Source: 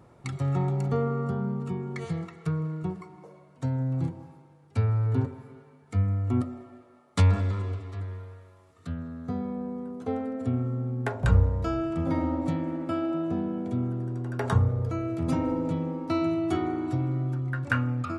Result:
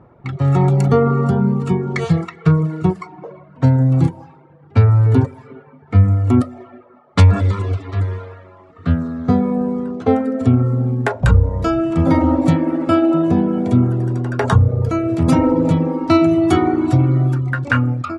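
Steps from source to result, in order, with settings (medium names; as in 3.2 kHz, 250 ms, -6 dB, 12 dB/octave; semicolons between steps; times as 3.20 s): in parallel at +3 dB: peak limiter -19.5 dBFS, peak gain reduction 10 dB; on the sum: level rider gain up to 11.5 dB; level-controlled noise filter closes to 1.7 kHz, open at -10.5 dBFS; reverb removal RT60 0.69 s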